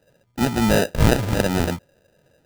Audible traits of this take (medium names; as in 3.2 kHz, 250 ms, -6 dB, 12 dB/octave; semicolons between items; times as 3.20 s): aliases and images of a low sample rate 1.1 kHz, jitter 0%